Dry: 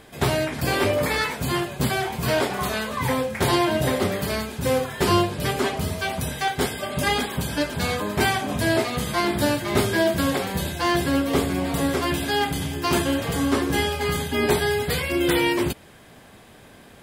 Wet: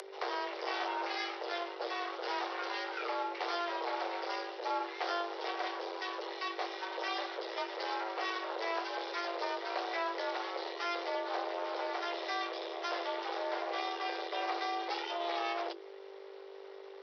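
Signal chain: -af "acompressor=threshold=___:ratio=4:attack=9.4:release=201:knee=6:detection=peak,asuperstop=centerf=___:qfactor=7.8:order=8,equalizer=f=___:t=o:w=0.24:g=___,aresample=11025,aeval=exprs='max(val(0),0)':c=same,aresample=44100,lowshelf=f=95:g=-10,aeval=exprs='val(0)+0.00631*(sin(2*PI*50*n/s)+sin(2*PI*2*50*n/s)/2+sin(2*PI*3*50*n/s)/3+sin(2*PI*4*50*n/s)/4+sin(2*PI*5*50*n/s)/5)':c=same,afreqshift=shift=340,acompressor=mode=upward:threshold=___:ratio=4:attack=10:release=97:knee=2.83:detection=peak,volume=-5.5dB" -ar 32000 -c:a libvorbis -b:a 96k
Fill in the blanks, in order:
-23dB, 2200, 470, 6.5, -42dB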